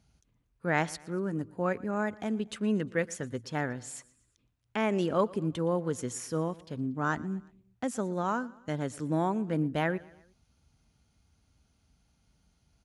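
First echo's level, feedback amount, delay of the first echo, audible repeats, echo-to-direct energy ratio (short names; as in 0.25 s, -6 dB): -22.0 dB, 50%, 0.118 s, 3, -21.0 dB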